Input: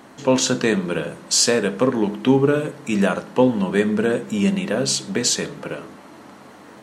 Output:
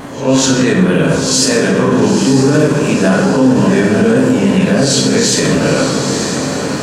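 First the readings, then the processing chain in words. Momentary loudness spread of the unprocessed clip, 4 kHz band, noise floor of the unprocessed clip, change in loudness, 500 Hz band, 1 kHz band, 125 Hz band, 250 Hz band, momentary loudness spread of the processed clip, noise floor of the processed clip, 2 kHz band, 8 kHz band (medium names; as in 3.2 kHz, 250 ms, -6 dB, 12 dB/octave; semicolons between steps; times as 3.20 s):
8 LU, +7.5 dB, -44 dBFS, +8.5 dB, +8.0 dB, +8.5 dB, +12.5 dB, +10.5 dB, 4 LU, -18 dBFS, +9.5 dB, +7.0 dB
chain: reverse spectral sustain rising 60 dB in 0.35 s; bass shelf 150 Hz +8.5 dB; reverse; compression 5:1, threshold -24 dBFS, peak gain reduction 15 dB; reverse; vibrato 3.6 Hz 62 cents; echo that smears into a reverb 947 ms, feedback 55%, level -8 dB; plate-style reverb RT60 1.2 s, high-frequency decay 0.6×, DRR -1.5 dB; loudness maximiser +14 dB; trim -1 dB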